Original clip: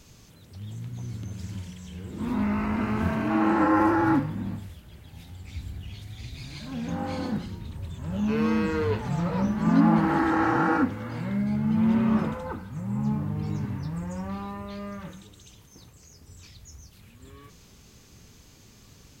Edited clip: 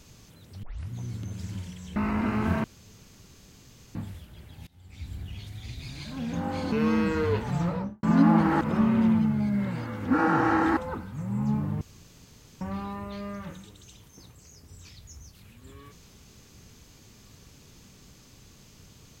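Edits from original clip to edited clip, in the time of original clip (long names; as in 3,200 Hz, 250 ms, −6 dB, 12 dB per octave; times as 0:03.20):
0:00.63: tape start 0.29 s
0:01.96–0:02.51: remove
0:03.19–0:04.50: fill with room tone
0:05.22–0:05.74: fade in, from −23.5 dB
0:07.27–0:08.30: remove
0:09.20–0:09.61: fade out and dull
0:10.19–0:12.35: reverse
0:13.39–0:14.19: fill with room tone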